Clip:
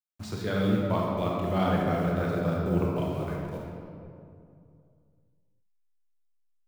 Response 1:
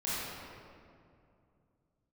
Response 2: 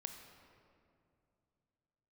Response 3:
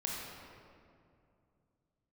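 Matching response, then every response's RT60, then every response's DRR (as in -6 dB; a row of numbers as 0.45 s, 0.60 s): 3; 2.5 s, 2.5 s, 2.5 s; -10.5 dB, 5.0 dB, -3.5 dB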